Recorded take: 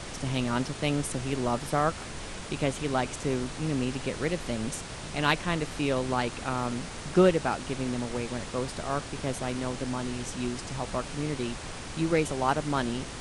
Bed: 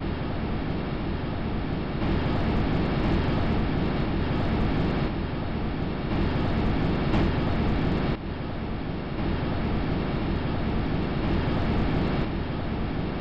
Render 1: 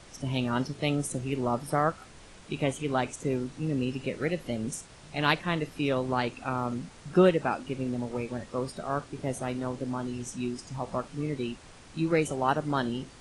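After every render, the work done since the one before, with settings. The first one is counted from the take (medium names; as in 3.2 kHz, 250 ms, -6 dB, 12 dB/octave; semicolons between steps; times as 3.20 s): noise print and reduce 12 dB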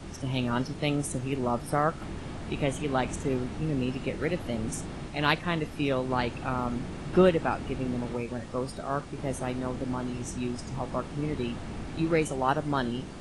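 add bed -13 dB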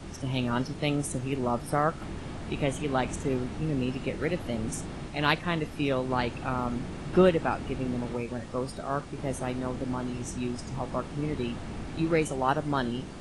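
no audible change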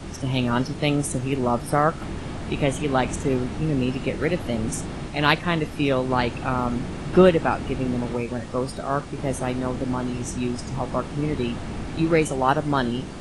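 trim +6 dB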